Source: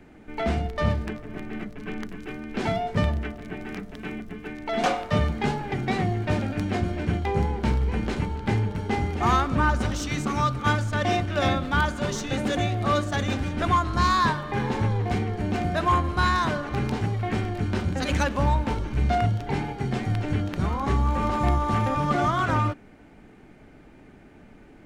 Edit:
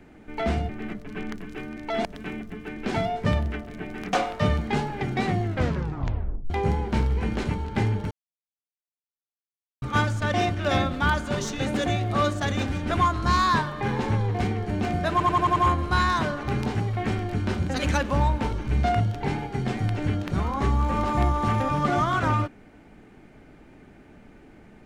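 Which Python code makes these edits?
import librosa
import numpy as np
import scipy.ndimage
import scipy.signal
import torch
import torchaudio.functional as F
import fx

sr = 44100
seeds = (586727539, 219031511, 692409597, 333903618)

y = fx.edit(x, sr, fx.cut(start_s=0.69, length_s=0.71),
    fx.swap(start_s=2.48, length_s=1.36, other_s=4.56, other_length_s=0.28),
    fx.tape_stop(start_s=6.15, length_s=1.06),
    fx.silence(start_s=8.82, length_s=1.71),
    fx.stutter(start_s=15.82, slice_s=0.09, count=6), tone=tone)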